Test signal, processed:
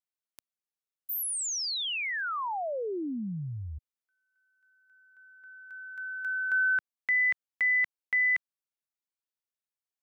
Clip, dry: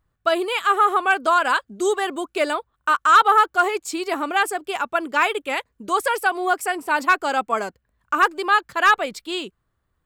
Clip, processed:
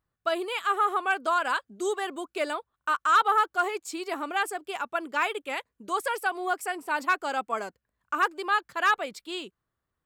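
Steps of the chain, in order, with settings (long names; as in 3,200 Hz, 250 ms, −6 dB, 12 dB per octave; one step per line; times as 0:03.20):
low-shelf EQ 84 Hz −10.5 dB
level −7.5 dB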